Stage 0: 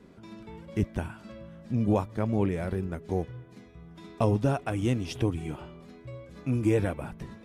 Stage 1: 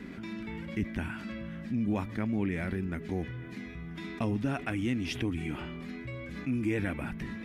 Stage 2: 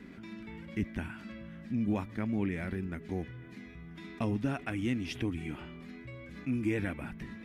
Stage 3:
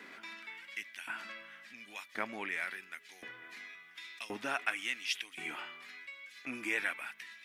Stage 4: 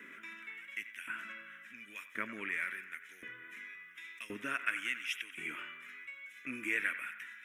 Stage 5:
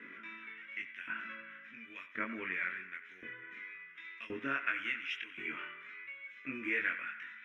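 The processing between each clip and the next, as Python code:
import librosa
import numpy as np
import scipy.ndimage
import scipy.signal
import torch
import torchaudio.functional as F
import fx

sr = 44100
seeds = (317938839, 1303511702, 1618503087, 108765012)

y1 = fx.graphic_eq(x, sr, hz=(125, 250, 500, 1000, 2000, 8000), db=(-4, 7, -7, -4, 10, -4))
y1 = fx.env_flatten(y1, sr, amount_pct=50)
y1 = y1 * librosa.db_to_amplitude(-7.5)
y2 = fx.upward_expand(y1, sr, threshold_db=-39.0, expansion=1.5)
y3 = fx.filter_lfo_highpass(y2, sr, shape='saw_up', hz=0.93, low_hz=690.0, high_hz=3300.0, q=0.77)
y3 = y3 * librosa.db_to_amplitude(7.5)
y4 = fx.fixed_phaser(y3, sr, hz=1900.0, stages=4)
y4 = fx.echo_banded(y4, sr, ms=91, feedback_pct=70, hz=1400.0, wet_db=-12.0)
y4 = y4 * librosa.db_to_amplitude(1.0)
y5 = fx.air_absorb(y4, sr, metres=250.0)
y5 = fx.doubler(y5, sr, ms=22.0, db=-2.5)
y5 = y5 * librosa.db_to_amplitude(1.0)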